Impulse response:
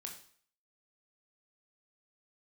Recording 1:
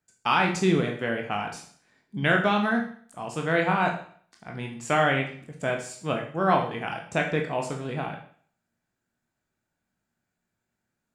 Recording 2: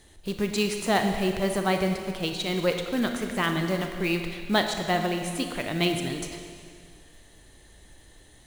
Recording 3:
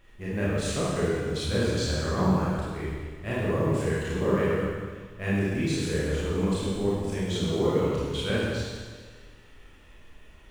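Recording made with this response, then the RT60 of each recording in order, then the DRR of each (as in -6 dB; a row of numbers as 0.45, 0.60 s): 1; 0.55, 2.1, 1.6 s; 1.0, 4.5, -8.5 dB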